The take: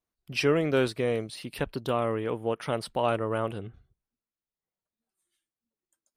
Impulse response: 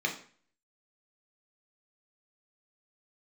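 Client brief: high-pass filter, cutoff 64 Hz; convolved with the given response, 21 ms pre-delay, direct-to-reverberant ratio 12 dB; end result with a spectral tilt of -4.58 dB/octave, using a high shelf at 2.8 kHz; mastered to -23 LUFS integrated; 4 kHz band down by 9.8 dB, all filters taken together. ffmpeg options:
-filter_complex "[0:a]highpass=64,highshelf=f=2800:g=-7,equalizer=f=4000:t=o:g=-8,asplit=2[s0][s1];[1:a]atrim=start_sample=2205,adelay=21[s2];[s1][s2]afir=irnorm=-1:irlink=0,volume=0.1[s3];[s0][s3]amix=inputs=2:normalize=0,volume=2.11"

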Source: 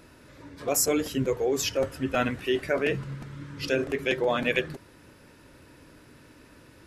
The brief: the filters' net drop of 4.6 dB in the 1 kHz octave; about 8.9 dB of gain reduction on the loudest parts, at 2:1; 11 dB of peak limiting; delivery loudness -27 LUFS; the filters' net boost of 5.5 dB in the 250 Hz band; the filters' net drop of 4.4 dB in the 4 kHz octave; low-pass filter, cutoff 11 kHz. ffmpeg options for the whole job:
-af "lowpass=11000,equalizer=f=250:t=o:g=7,equalizer=f=1000:t=o:g=-7.5,equalizer=f=4000:t=o:g=-6,acompressor=threshold=0.0178:ratio=2,volume=5.01,alimiter=limit=0.141:level=0:latency=1"

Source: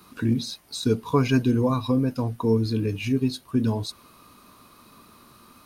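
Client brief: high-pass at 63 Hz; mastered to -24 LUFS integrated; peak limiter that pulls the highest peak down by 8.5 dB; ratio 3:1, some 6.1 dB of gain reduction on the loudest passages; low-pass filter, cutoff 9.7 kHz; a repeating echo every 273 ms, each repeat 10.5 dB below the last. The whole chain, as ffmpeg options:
-af "highpass=63,lowpass=9700,acompressor=threshold=0.0631:ratio=3,alimiter=limit=0.0841:level=0:latency=1,aecho=1:1:273|546|819:0.299|0.0896|0.0269,volume=2.37"

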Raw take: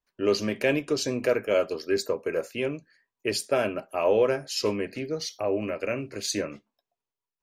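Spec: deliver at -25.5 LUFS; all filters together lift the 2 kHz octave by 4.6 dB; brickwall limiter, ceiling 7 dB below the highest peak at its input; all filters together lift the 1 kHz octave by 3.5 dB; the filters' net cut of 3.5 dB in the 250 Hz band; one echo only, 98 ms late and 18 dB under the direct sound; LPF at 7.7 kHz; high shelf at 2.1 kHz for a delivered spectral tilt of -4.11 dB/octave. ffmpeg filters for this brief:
-af "lowpass=7700,equalizer=f=250:t=o:g=-5,equalizer=f=1000:t=o:g=4,equalizer=f=2000:t=o:g=8,highshelf=f=2100:g=-5,alimiter=limit=0.168:level=0:latency=1,aecho=1:1:98:0.126,volume=1.5"

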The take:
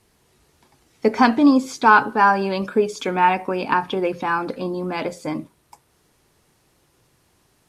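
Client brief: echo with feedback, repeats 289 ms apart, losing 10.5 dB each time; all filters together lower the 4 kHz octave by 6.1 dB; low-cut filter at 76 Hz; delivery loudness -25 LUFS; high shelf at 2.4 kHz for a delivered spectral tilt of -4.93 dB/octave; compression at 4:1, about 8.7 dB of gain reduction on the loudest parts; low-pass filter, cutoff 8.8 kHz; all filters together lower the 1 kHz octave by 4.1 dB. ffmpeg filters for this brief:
-af "highpass=76,lowpass=8800,equalizer=f=1000:t=o:g=-4,highshelf=f=2400:g=-4.5,equalizer=f=4000:t=o:g=-3.5,acompressor=threshold=0.1:ratio=4,aecho=1:1:289|578|867:0.299|0.0896|0.0269,volume=1.06"

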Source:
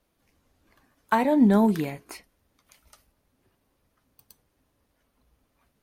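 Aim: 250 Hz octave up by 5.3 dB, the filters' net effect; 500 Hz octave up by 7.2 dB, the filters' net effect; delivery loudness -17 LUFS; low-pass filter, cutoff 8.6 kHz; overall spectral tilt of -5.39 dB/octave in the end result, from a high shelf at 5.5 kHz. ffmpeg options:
-af "lowpass=8600,equalizer=f=250:t=o:g=4.5,equalizer=f=500:t=o:g=8,highshelf=f=5500:g=5.5"

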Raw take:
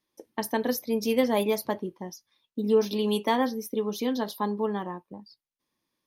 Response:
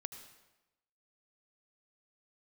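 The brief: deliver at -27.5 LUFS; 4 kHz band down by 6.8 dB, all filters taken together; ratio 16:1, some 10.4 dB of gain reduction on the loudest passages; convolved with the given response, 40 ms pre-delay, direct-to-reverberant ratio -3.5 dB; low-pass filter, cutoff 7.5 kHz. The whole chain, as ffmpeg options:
-filter_complex "[0:a]lowpass=7500,equalizer=f=4000:t=o:g=-9,acompressor=threshold=0.0447:ratio=16,asplit=2[s0][s1];[1:a]atrim=start_sample=2205,adelay=40[s2];[s1][s2]afir=irnorm=-1:irlink=0,volume=2.11[s3];[s0][s3]amix=inputs=2:normalize=0,volume=1.19"

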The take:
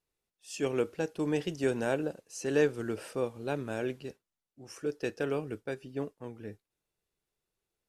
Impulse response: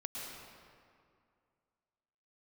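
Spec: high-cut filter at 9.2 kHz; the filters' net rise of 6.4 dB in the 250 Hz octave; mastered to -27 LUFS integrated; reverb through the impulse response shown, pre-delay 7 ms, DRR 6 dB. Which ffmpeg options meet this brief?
-filter_complex "[0:a]lowpass=9200,equalizer=f=250:t=o:g=8,asplit=2[s0][s1];[1:a]atrim=start_sample=2205,adelay=7[s2];[s1][s2]afir=irnorm=-1:irlink=0,volume=0.473[s3];[s0][s3]amix=inputs=2:normalize=0,volume=1.19"

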